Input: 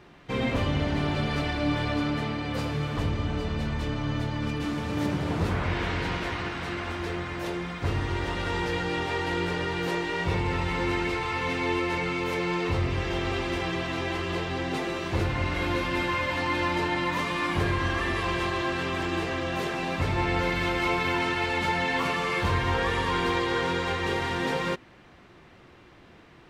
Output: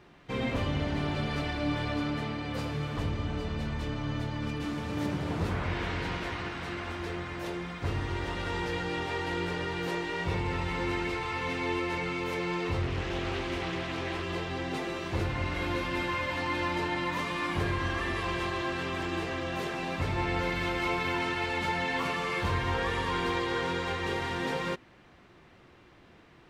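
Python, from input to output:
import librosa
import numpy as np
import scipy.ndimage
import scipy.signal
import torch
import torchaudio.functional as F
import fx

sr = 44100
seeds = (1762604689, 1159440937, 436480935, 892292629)

y = fx.doppler_dist(x, sr, depth_ms=0.4, at=(12.82, 14.23))
y = F.gain(torch.from_numpy(y), -4.0).numpy()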